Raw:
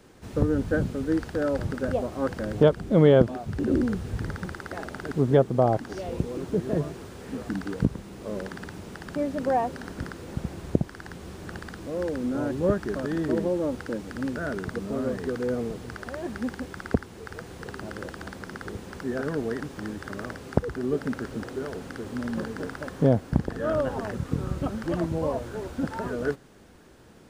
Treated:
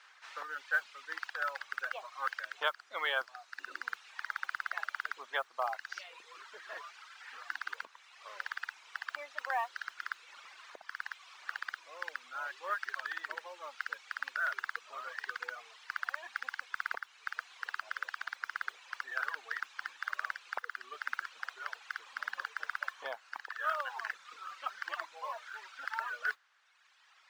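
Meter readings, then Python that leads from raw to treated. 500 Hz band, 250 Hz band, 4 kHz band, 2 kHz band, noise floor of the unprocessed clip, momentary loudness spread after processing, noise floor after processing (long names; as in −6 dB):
−22.5 dB, below −40 dB, −0.5 dB, +3.0 dB, −45 dBFS, 11 LU, −63 dBFS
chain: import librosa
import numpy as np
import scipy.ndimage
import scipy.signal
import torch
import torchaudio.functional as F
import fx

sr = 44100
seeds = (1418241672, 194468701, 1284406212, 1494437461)

y = scipy.signal.sosfilt(scipy.signal.cheby1(2, 1.0, 5400.0, 'lowpass', fs=sr, output='sos'), x)
y = fx.dereverb_blind(y, sr, rt60_s=1.9)
y = scipy.signal.sosfilt(scipy.signal.butter(4, 1200.0, 'highpass', fs=sr, output='sos'), y)
y = fx.high_shelf(y, sr, hz=3700.0, db=-12.0)
y = fx.mod_noise(y, sr, seeds[0], snr_db=31)
y = F.gain(torch.from_numpy(y), 7.5).numpy()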